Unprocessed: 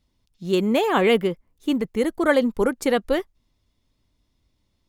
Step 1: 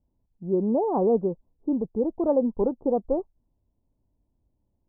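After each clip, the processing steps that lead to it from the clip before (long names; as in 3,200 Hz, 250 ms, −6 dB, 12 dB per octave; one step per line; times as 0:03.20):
Butterworth low-pass 930 Hz 48 dB per octave
level −3 dB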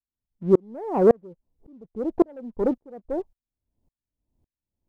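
leveller curve on the samples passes 1
tremolo with a ramp in dB swelling 1.8 Hz, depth 39 dB
level +7.5 dB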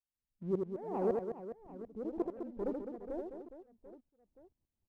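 downward compressor 1.5 to 1, threshold −39 dBFS, peak gain reduction 10 dB
reverse bouncing-ball delay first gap 80 ms, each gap 1.6×, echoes 5
level −8 dB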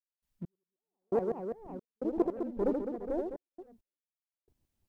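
gate pattern ".x...xxx.xxxxxx" 67 BPM −60 dB
level +7 dB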